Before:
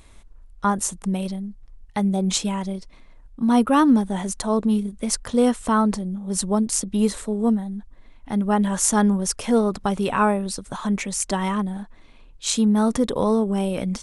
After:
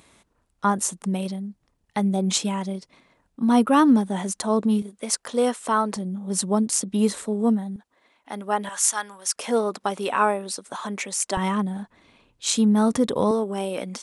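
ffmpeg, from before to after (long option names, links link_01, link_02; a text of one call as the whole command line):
ffmpeg -i in.wav -af "asetnsamples=nb_out_samples=441:pad=0,asendcmd='4.82 highpass f 360;5.96 highpass f 150;7.76 highpass f 460;8.69 highpass f 1200;9.36 highpass f 360;11.37 highpass f 100;13.31 highpass f 320',highpass=150" out.wav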